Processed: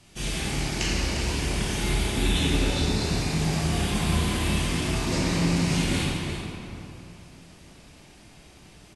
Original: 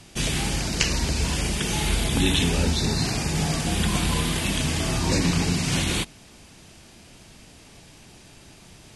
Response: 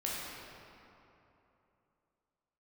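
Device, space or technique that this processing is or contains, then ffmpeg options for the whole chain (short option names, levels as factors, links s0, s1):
cave: -filter_complex "[0:a]aecho=1:1:352:0.299[s0];[1:a]atrim=start_sample=2205[s1];[s0][s1]afir=irnorm=-1:irlink=0,volume=0.473"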